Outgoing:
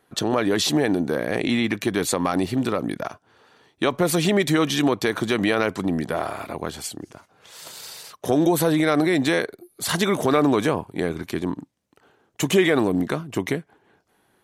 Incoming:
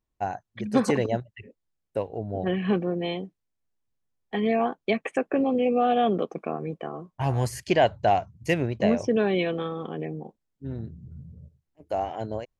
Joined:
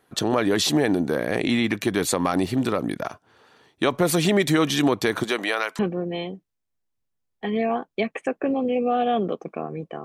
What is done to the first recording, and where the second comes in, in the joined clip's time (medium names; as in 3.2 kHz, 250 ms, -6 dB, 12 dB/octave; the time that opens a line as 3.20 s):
outgoing
5.23–5.79 s: high-pass 290 Hz -> 1.2 kHz
5.79 s: go over to incoming from 2.69 s